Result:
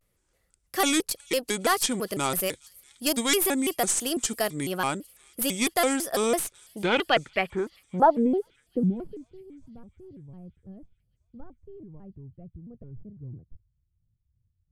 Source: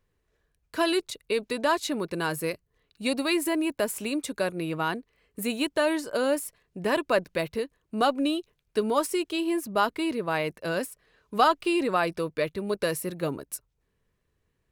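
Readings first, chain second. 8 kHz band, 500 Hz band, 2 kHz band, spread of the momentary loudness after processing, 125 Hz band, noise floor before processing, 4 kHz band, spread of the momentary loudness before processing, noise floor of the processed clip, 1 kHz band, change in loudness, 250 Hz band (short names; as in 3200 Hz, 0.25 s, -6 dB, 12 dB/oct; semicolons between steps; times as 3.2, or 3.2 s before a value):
+9.0 dB, -1.5 dB, -0.5 dB, 20 LU, +1.5 dB, -76 dBFS, +2.5 dB, 9 LU, -74 dBFS, -0.5 dB, +2.0 dB, -1.0 dB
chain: tracing distortion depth 0.074 ms; high shelf 6000 Hz +10.5 dB; low-pass sweep 9800 Hz -> 100 Hz, 6.23–9.46; on a send: thin delay 0.4 s, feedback 64%, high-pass 3500 Hz, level -23 dB; on the sum: shaped vibrato square 3 Hz, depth 250 cents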